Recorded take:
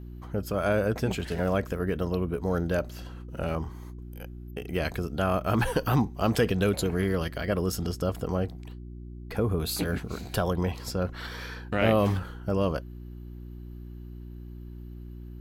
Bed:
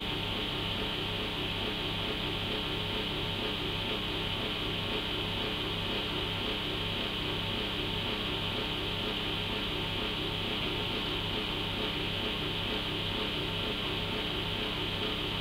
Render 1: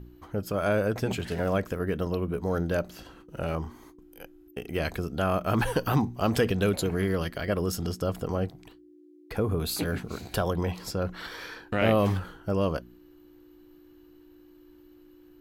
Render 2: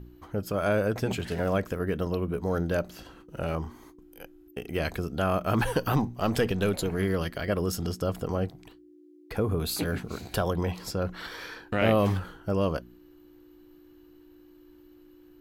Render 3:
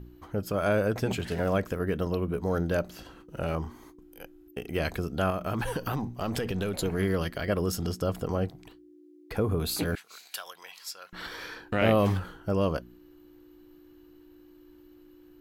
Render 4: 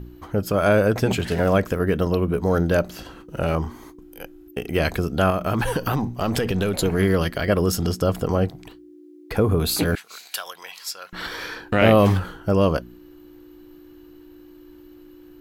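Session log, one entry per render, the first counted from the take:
hum removal 60 Hz, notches 4
0:05.95–0:06.99: gain on one half-wave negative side −3 dB
0:05.30–0:06.79: downward compressor, threshold −26 dBFS; 0:09.95–0:11.13: Bessel high-pass filter 2,300 Hz
level +8 dB; brickwall limiter −2 dBFS, peak gain reduction 0.5 dB

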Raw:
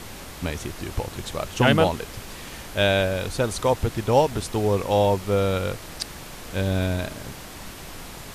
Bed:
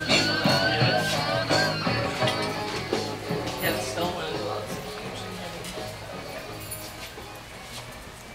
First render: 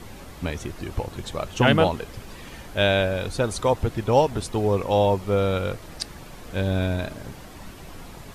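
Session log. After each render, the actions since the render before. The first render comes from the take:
broadband denoise 8 dB, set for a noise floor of −40 dBFS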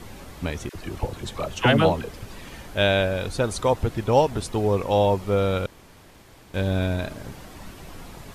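0:00.69–0:02.41: all-pass dispersion lows, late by 55 ms, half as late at 820 Hz
0:05.66–0:06.54: fill with room tone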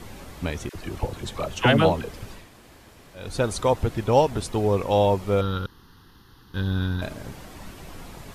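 0:02.41–0:03.25: fill with room tone, crossfade 0.24 s
0:05.41–0:07.02: phaser with its sweep stopped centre 2,300 Hz, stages 6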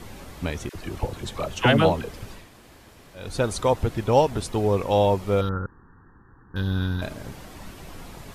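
0:05.49–0:06.56: linear-phase brick-wall low-pass 1,900 Hz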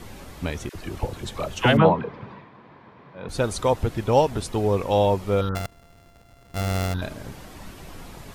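0:01.77–0:03.29: loudspeaker in its box 130–3,100 Hz, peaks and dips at 140 Hz +9 dB, 200 Hz +5 dB, 460 Hz +3 dB, 1,000 Hz +10 dB, 2,900 Hz −7 dB
0:05.55–0:06.94: samples sorted by size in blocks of 64 samples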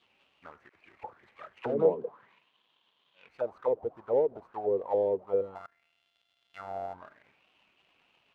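running median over 25 samples
envelope filter 440–3,400 Hz, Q 4.9, down, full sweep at −17.5 dBFS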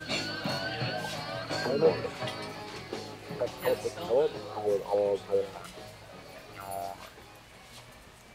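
mix in bed −11 dB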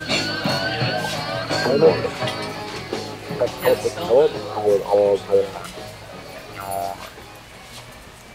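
level +11 dB
brickwall limiter −3 dBFS, peak gain reduction 2 dB

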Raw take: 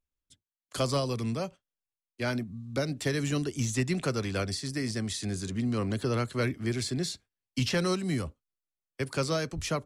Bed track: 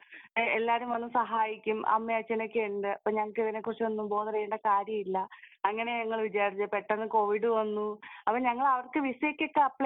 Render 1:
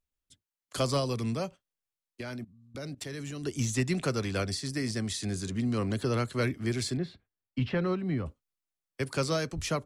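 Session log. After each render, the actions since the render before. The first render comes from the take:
0:02.21–0:03.44: output level in coarse steps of 19 dB
0:06.97–0:08.26: high-frequency loss of the air 460 metres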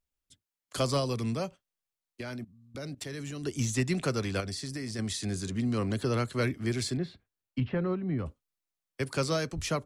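0:04.40–0:04.99: downward compressor, threshold −32 dBFS
0:07.60–0:08.19: head-to-tape spacing loss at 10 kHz 27 dB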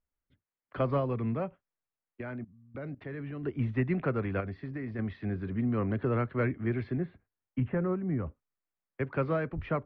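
inverse Chebyshev low-pass filter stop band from 6,700 Hz, stop band 60 dB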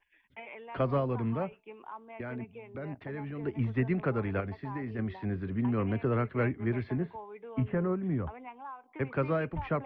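mix in bed track −17.5 dB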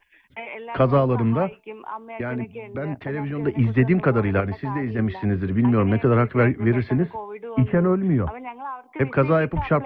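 level +11 dB

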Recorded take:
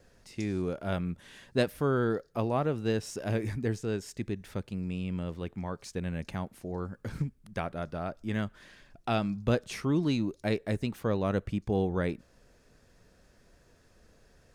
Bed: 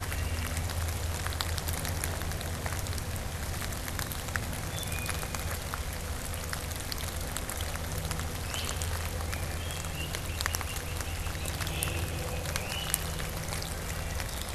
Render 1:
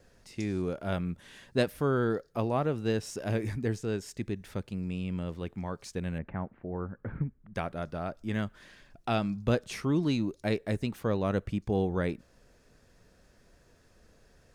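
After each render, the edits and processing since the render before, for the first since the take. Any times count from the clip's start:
0:06.18–0:07.55: inverse Chebyshev low-pass filter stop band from 6,300 Hz, stop band 60 dB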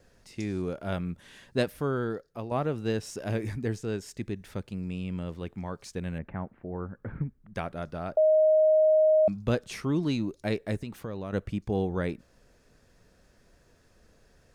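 0:01.65–0:02.51: fade out, to −8 dB
0:08.17–0:09.28: beep over 624 Hz −17.5 dBFS
0:10.82–0:11.33: downward compressor, threshold −32 dBFS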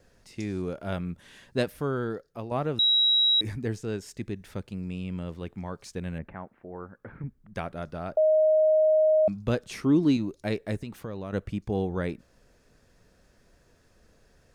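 0:02.79–0:03.41: beep over 3,860 Hz −18.5 dBFS
0:06.33–0:07.24: low-shelf EQ 250 Hz −11.5 dB
0:09.75–0:10.17: parametric band 290 Hz +8 dB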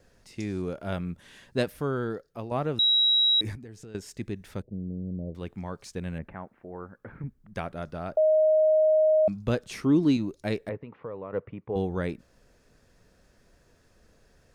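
0:03.55–0:03.95: downward compressor 8 to 1, threshold −41 dBFS
0:04.62–0:05.35: Butterworth low-pass 660 Hz 48 dB per octave
0:10.69–0:11.76: loudspeaker in its box 160–2,100 Hz, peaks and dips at 210 Hz −9 dB, 330 Hz −6 dB, 480 Hz +5 dB, 710 Hz −4 dB, 1,000 Hz +4 dB, 1,600 Hz −7 dB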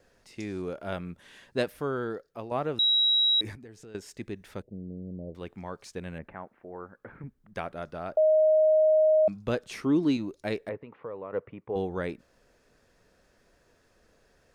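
bass and treble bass −7 dB, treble −3 dB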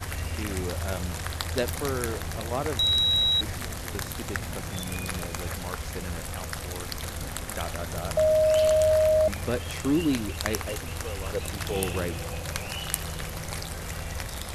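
mix in bed +0.5 dB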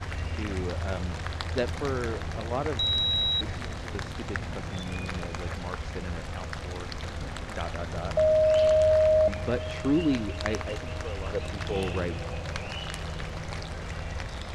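high-frequency loss of the air 120 metres
feedback echo with a band-pass in the loop 447 ms, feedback 80%, band-pass 760 Hz, level −23.5 dB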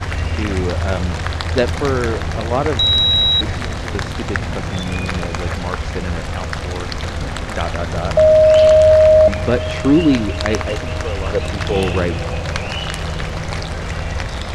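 level +12 dB
brickwall limiter −2 dBFS, peak gain reduction 2.5 dB

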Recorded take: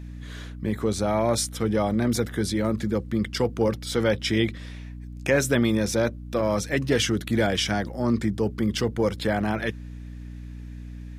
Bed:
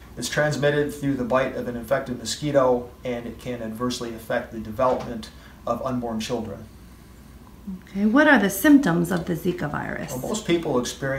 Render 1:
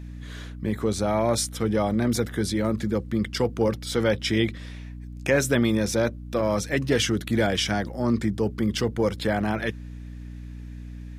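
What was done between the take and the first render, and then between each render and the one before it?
no processing that can be heard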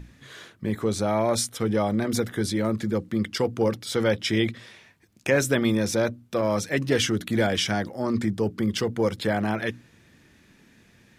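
mains-hum notches 60/120/180/240/300 Hz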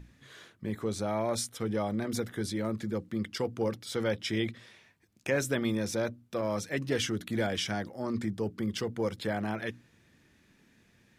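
level −7.5 dB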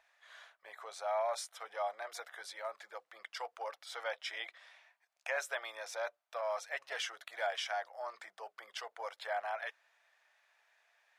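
elliptic high-pass filter 670 Hz, stop band 60 dB
spectral tilt −3 dB per octave

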